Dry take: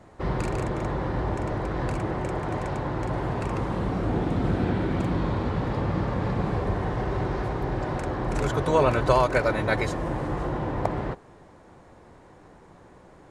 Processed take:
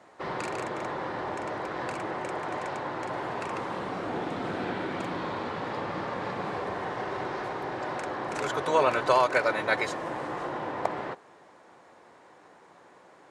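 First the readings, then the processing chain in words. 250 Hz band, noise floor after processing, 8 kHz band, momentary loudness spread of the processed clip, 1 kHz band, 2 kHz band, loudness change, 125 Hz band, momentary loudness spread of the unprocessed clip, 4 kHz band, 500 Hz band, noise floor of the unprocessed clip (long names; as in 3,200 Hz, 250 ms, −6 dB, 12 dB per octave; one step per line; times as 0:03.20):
−8.0 dB, −56 dBFS, −0.5 dB, 10 LU, −0.5 dB, +1.0 dB, −4.0 dB, −16.0 dB, 8 LU, +1.0 dB, −3.0 dB, −52 dBFS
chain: meter weighting curve A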